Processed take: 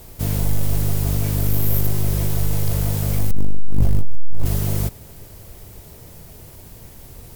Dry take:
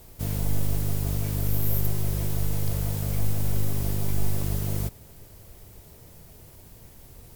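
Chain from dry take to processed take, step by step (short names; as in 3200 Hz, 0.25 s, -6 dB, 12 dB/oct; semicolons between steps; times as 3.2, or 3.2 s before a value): 3.31–4.46 tilt -2.5 dB/oct; soft clip -14.5 dBFS, distortion -8 dB; gain +7.5 dB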